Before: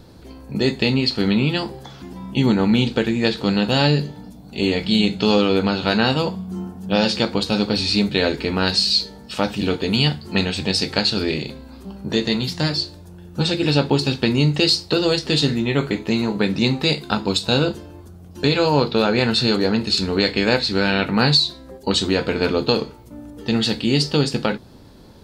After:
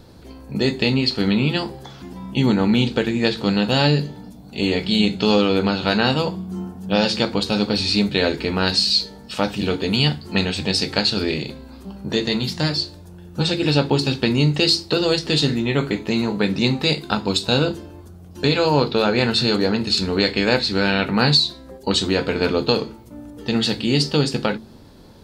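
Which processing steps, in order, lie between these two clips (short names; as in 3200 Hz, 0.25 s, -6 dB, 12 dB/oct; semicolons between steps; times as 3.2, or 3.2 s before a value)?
de-hum 55.56 Hz, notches 7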